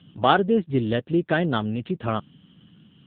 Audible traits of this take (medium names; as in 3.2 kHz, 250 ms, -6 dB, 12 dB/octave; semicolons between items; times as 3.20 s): AMR-NB